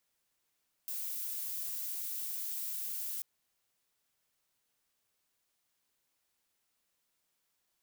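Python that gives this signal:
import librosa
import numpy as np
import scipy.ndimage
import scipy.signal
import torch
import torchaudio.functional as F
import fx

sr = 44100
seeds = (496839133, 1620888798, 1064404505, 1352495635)

y = fx.noise_colour(sr, seeds[0], length_s=2.34, colour='violet', level_db=-38.5)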